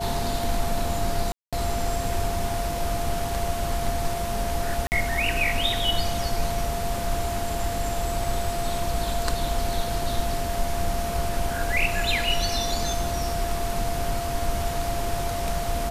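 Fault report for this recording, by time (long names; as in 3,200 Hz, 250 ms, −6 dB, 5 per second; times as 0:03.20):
whistle 690 Hz −29 dBFS
0:01.32–0:01.53: drop-out 206 ms
0:04.87–0:04.92: drop-out 49 ms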